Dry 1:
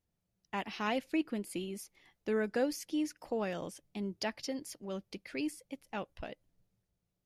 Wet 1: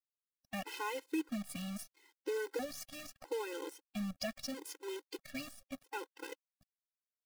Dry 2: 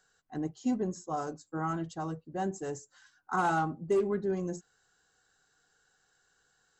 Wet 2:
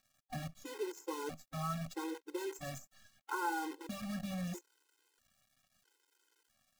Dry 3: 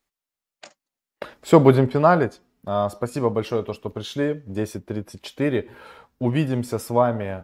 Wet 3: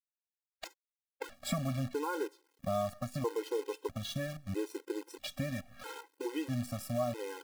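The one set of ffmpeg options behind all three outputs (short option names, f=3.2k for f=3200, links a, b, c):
-af "acompressor=threshold=-36dB:ratio=3,acrusher=bits=8:dc=4:mix=0:aa=0.000001,afftfilt=real='re*gt(sin(2*PI*0.77*pts/sr)*(1-2*mod(floor(b*sr/1024/270),2)),0)':imag='im*gt(sin(2*PI*0.77*pts/sr)*(1-2*mod(floor(b*sr/1024/270),2)),0)':win_size=1024:overlap=0.75,volume=2.5dB"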